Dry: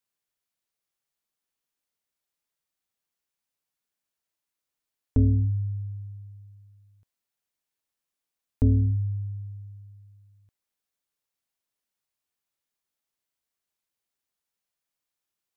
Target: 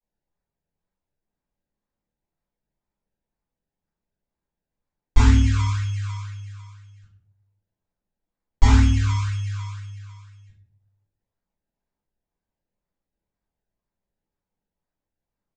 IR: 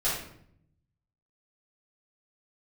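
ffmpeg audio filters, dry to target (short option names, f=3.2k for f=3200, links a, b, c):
-filter_complex "[0:a]tiltshelf=f=630:g=8,acompressor=threshold=-27dB:ratio=1.5,aresample=16000,acrusher=samples=10:mix=1:aa=0.000001:lfo=1:lforange=10:lforate=2,aresample=44100[a];[1:a]atrim=start_sample=2205,asetrate=57330,aresample=44100[b];[a][b]afir=irnorm=-1:irlink=0,volume=-2dB"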